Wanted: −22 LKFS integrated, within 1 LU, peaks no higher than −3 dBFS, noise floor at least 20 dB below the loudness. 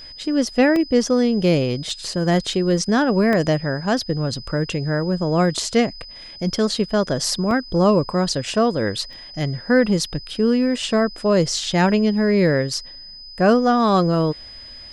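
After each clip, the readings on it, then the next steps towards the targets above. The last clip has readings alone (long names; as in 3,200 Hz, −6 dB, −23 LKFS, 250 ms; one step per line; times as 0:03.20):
number of dropouts 5; longest dropout 1.6 ms; interfering tone 5,000 Hz; level of the tone −37 dBFS; integrated loudness −19.5 LKFS; sample peak −4.5 dBFS; target loudness −22.0 LKFS
→ repair the gap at 0:00.76/0:01.90/0:03.33/0:07.51/0:09.13, 1.6 ms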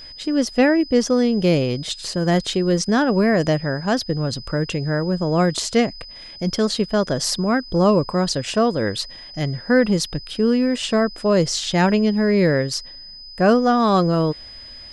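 number of dropouts 0; interfering tone 5,000 Hz; level of the tone −37 dBFS
→ notch filter 5,000 Hz, Q 30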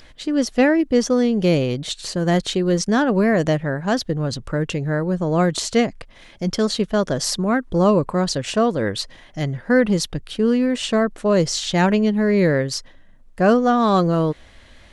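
interfering tone none found; integrated loudness −20.0 LKFS; sample peak −4.5 dBFS; target loudness −22.0 LKFS
→ level −2 dB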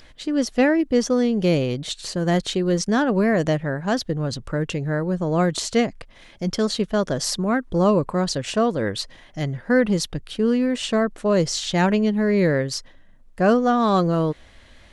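integrated loudness −22.0 LKFS; sample peak −6.5 dBFS; background noise floor −49 dBFS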